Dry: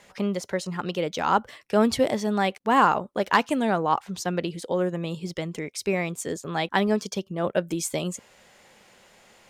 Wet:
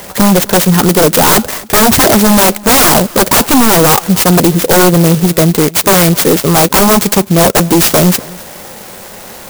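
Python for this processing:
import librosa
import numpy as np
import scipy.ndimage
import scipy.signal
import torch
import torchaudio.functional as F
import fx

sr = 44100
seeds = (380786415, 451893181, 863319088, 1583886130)

y = fx.fold_sine(x, sr, drive_db=18, ceiling_db=-7.0)
y = fx.echo_feedback(y, sr, ms=259, feedback_pct=25, wet_db=-22.0)
y = fx.clock_jitter(y, sr, seeds[0], jitter_ms=0.11)
y = F.gain(torch.from_numpy(y), 4.0).numpy()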